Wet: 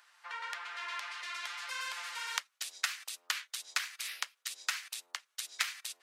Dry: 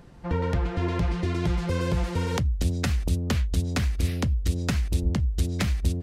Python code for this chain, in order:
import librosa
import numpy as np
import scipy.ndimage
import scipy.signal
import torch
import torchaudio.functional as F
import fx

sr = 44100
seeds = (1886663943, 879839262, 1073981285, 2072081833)

y = scipy.signal.sosfilt(scipy.signal.butter(4, 1200.0, 'highpass', fs=sr, output='sos'), x)